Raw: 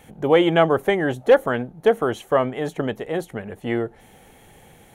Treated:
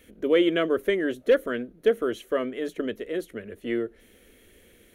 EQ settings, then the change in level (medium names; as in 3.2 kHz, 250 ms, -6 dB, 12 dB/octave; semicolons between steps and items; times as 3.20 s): peaking EQ 7.6 kHz -5 dB 0.7 oct; static phaser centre 340 Hz, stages 4; band-stop 1.1 kHz, Q 17; -2.5 dB